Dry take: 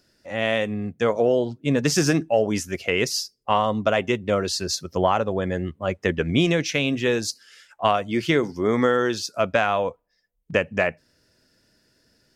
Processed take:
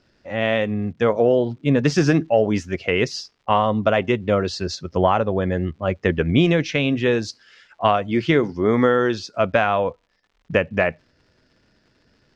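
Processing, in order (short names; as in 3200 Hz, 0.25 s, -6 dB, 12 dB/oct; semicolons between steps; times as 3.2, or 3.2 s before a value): low shelf 120 Hz +4 dB; crackle 210/s -48 dBFS; air absorption 160 m; gain +3 dB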